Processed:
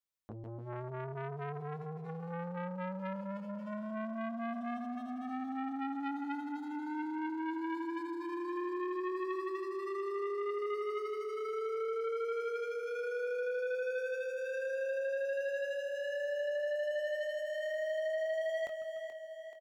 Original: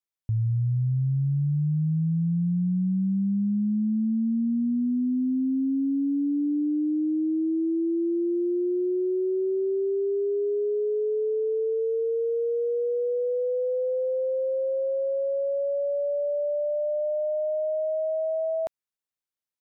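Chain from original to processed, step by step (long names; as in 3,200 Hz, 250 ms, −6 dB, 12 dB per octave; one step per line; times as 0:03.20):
gain into a clipping stage and back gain 31.5 dB
double-tracking delay 22 ms −8.5 dB
on a send: echo with a time of its own for lows and highs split 300 Hz, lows 146 ms, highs 430 ms, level −8.5 dB
on the sum: saturating transformer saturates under 1,100 Hz
level −2.5 dB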